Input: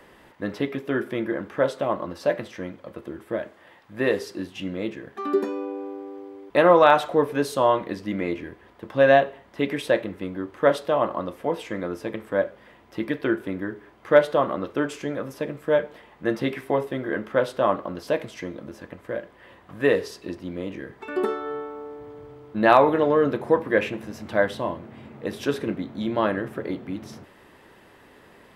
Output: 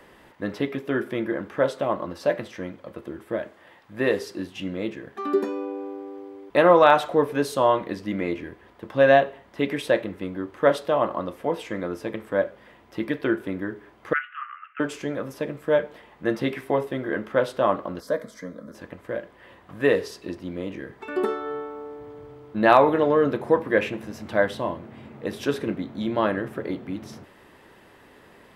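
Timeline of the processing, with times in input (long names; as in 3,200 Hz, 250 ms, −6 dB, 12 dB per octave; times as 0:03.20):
0:14.13–0:14.80: Chebyshev band-pass filter 1,200–2,900 Hz, order 5
0:18.00–0:18.75: phaser with its sweep stopped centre 540 Hz, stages 8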